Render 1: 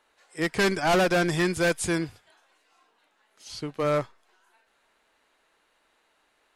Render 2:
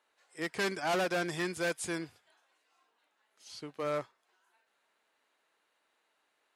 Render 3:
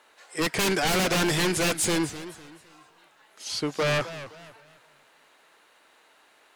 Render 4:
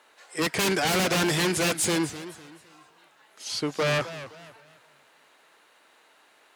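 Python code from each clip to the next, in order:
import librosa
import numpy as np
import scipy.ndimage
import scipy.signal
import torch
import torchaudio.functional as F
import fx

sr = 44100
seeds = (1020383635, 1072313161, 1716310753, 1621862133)

y1 = fx.highpass(x, sr, hz=260.0, slope=6)
y1 = y1 * librosa.db_to_amplitude(-8.0)
y2 = fx.fold_sine(y1, sr, drive_db=13, ceiling_db=-20.5)
y2 = fx.echo_warbled(y2, sr, ms=256, feedback_pct=33, rate_hz=2.8, cents=193, wet_db=-14.0)
y3 = scipy.signal.sosfilt(scipy.signal.butter(2, 66.0, 'highpass', fs=sr, output='sos'), y2)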